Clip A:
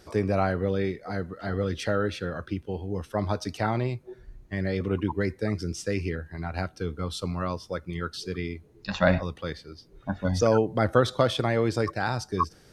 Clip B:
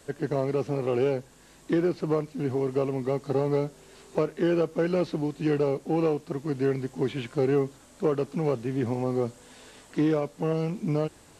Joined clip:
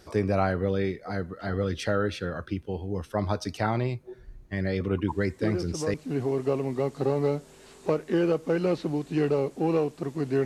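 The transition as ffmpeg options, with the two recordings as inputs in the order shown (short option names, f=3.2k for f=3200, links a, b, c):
-filter_complex "[1:a]asplit=2[a][b];[0:a]apad=whole_dur=10.45,atrim=end=10.45,atrim=end=5.942[c];[b]atrim=start=2.228:end=6.74[d];[a]atrim=start=1.37:end=2.23,asetpts=PTS-STARTPTS,volume=-6.5dB,afade=t=in:d=0.004:c=hsin,afade=t=out:st=0.856:d=0.004:c=hsin,adelay=5080[e];[c][d]acrossfade=d=0.004:c1=hsin:c2=hsin[f];[f][e]amix=inputs=2:normalize=0"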